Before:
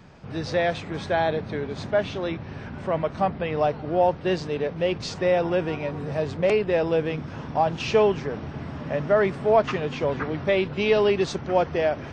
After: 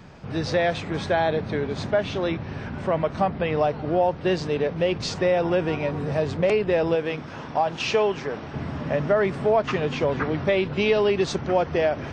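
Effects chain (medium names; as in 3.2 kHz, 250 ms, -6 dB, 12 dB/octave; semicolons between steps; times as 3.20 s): 6.95–8.53 s: bass shelf 260 Hz -10.5 dB; compression 2.5:1, threshold -22 dBFS, peak gain reduction 6.5 dB; trim +3.5 dB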